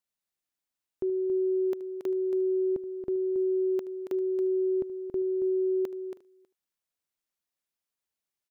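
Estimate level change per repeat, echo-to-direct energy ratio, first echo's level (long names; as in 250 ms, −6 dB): repeats not evenly spaced, −8.0 dB, −17.5 dB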